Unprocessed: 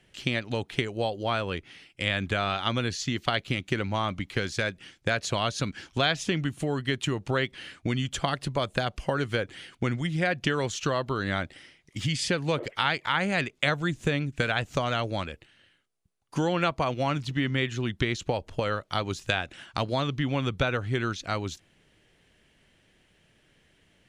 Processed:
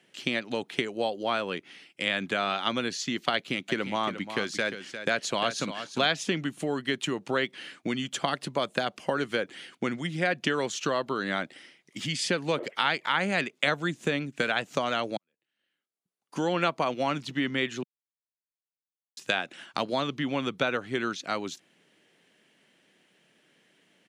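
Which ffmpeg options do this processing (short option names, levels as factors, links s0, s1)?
-filter_complex "[0:a]asplit=3[s0][s1][s2];[s0]afade=t=out:st=3.68:d=0.02[s3];[s1]aecho=1:1:352:0.316,afade=t=in:st=3.68:d=0.02,afade=t=out:st=6.08:d=0.02[s4];[s2]afade=t=in:st=6.08:d=0.02[s5];[s3][s4][s5]amix=inputs=3:normalize=0,asplit=4[s6][s7][s8][s9];[s6]atrim=end=15.17,asetpts=PTS-STARTPTS,afade=t=out:st=15.166:d=0.004:c=hsin[s10];[s7]atrim=start=15.17:end=17.83,asetpts=PTS-STARTPTS,afade=t=in:d=1.35:c=qua,afade=t=out:st=2.656:d=0.004:c=hsin[s11];[s8]atrim=start=17.83:end=19.17,asetpts=PTS-STARTPTS,volume=0[s12];[s9]atrim=start=19.17,asetpts=PTS-STARTPTS,afade=t=in:d=0.004:c=hsin[s13];[s10][s11][s12][s13]concat=n=4:v=0:a=1,highpass=f=180:w=0.5412,highpass=f=180:w=1.3066"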